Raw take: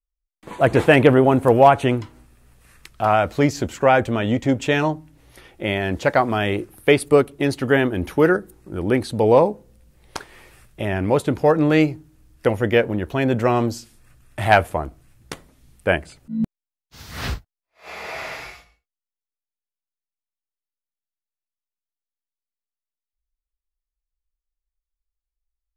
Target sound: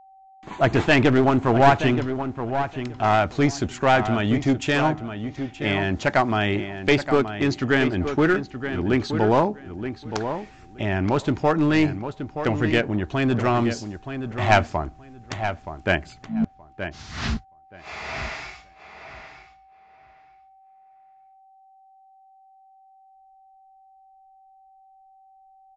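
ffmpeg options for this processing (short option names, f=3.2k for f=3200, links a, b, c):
-filter_complex "[0:a]equalizer=f=500:t=o:w=0.28:g=-12,aresample=16000,aeval=exprs='clip(val(0),-1,0.15)':c=same,aresample=44100,aeval=exprs='val(0)+0.00398*sin(2*PI*770*n/s)':c=same,asplit=2[a][b];[b]adelay=924,lowpass=f=3.1k:p=1,volume=-9dB,asplit=2[c][d];[d]adelay=924,lowpass=f=3.1k:p=1,volume=0.17,asplit=2[e][f];[f]adelay=924,lowpass=f=3.1k:p=1,volume=0.17[g];[a][c][e][g]amix=inputs=4:normalize=0"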